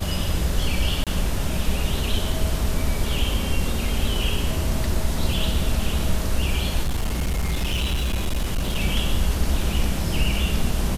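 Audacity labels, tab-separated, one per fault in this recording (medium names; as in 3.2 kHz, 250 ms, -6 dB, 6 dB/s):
1.040000	1.070000	dropout 27 ms
6.830000	8.760000	clipped -19 dBFS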